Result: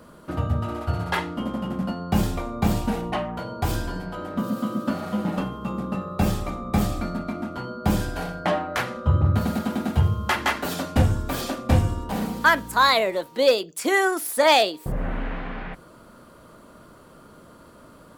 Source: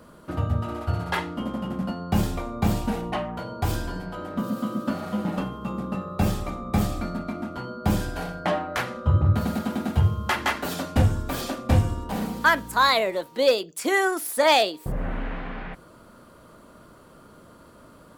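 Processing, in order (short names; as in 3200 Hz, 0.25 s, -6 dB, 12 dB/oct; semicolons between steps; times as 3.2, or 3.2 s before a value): notches 50/100 Hz; gain +1.5 dB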